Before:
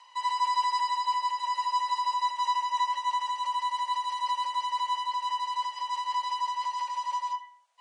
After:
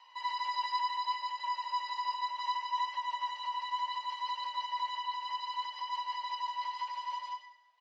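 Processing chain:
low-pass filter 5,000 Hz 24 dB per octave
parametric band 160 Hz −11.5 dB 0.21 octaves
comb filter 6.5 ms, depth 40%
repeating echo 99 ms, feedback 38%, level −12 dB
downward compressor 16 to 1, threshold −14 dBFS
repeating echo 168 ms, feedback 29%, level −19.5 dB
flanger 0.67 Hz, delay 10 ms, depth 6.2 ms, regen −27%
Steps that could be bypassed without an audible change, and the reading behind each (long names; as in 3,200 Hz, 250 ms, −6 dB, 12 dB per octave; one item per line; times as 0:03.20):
parametric band 160 Hz: nothing at its input below 910 Hz
downward compressor, threshold −14 dBFS: peak of its input −20.5 dBFS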